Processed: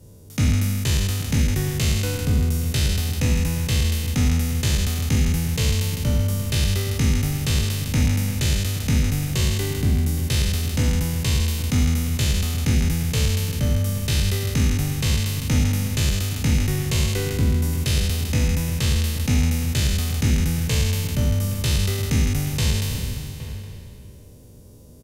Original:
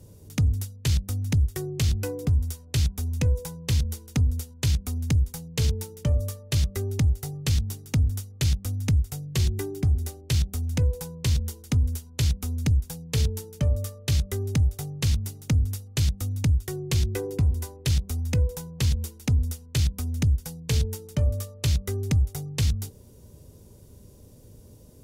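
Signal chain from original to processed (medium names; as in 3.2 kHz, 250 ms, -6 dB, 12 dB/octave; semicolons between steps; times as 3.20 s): spectral sustain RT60 2.34 s; echo from a far wall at 140 m, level -12 dB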